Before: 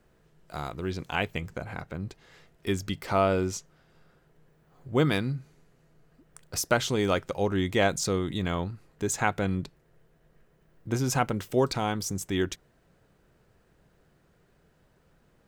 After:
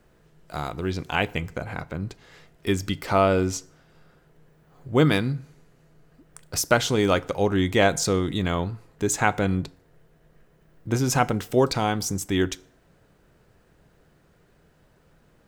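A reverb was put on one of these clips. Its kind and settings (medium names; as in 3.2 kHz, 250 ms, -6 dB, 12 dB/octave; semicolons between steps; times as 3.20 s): FDN reverb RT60 0.64 s, low-frequency decay 0.75×, high-frequency decay 0.7×, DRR 17 dB; trim +4.5 dB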